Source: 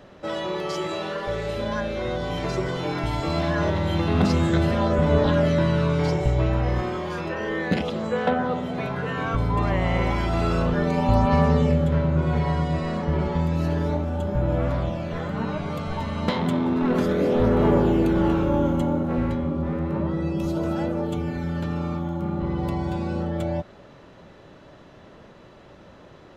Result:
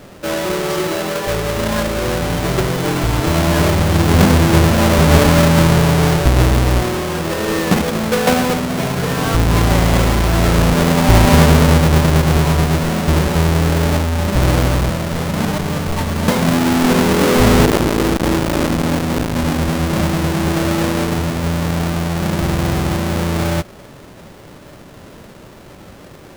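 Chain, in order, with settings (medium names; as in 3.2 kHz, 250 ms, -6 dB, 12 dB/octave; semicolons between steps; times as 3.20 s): square wave that keeps the level; 17.65–19.36 s: transformer saturation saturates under 300 Hz; trim +4.5 dB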